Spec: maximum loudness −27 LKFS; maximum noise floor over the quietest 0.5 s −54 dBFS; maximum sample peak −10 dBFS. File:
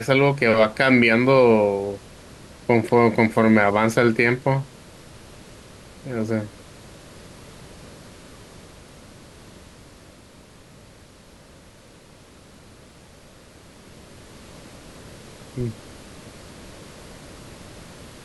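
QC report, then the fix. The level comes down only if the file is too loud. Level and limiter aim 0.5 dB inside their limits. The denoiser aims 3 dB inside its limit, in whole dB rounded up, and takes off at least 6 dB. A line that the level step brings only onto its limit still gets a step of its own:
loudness −19.0 LKFS: out of spec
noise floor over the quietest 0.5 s −48 dBFS: out of spec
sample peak −4.5 dBFS: out of spec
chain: level −8.5 dB

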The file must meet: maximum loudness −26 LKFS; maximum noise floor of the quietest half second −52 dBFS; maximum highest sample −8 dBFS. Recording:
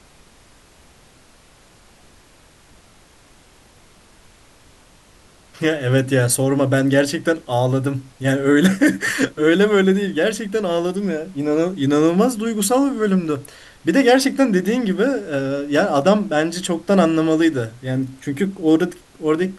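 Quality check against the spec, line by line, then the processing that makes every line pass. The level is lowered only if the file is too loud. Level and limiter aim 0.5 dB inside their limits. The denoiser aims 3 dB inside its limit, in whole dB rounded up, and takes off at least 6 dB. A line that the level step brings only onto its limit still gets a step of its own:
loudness −18.5 LKFS: out of spec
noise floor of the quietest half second −50 dBFS: out of spec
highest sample −2.0 dBFS: out of spec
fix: level −8 dB

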